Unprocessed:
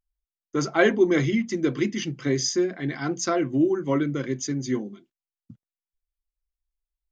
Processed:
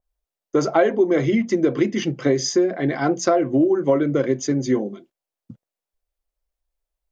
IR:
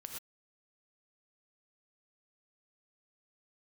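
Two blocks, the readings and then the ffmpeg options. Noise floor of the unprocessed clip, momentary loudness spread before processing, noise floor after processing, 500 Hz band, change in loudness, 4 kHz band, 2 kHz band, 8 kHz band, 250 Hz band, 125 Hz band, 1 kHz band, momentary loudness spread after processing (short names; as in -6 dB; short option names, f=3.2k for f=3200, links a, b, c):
under -85 dBFS, 9 LU, under -85 dBFS, +6.0 dB, +4.5 dB, +0.5 dB, -1.0 dB, +1.0 dB, +4.0 dB, +2.5 dB, +6.0 dB, 5 LU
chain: -af "equalizer=f=580:w=1.1:g=12.5,acompressor=threshold=-18dB:ratio=6,adynamicequalizer=threshold=0.00891:dfrequency=2900:dqfactor=0.7:tfrequency=2900:tqfactor=0.7:attack=5:release=100:ratio=0.375:range=2:mode=cutabove:tftype=highshelf,volume=4dB"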